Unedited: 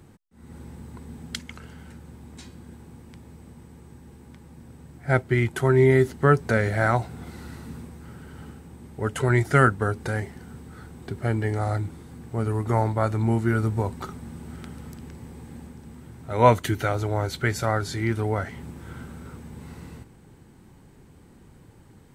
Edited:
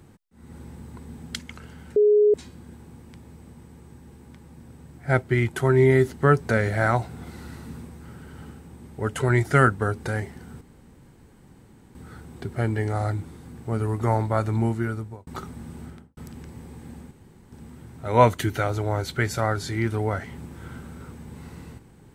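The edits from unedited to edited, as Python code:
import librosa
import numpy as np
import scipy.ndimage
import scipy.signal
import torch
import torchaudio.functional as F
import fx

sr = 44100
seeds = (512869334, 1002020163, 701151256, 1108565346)

y = fx.studio_fade_out(x, sr, start_s=14.46, length_s=0.37)
y = fx.edit(y, sr, fx.bleep(start_s=1.96, length_s=0.38, hz=418.0, db=-13.5),
    fx.insert_room_tone(at_s=10.61, length_s=1.34),
    fx.fade_out_span(start_s=13.24, length_s=0.69),
    fx.insert_room_tone(at_s=15.77, length_s=0.41), tone=tone)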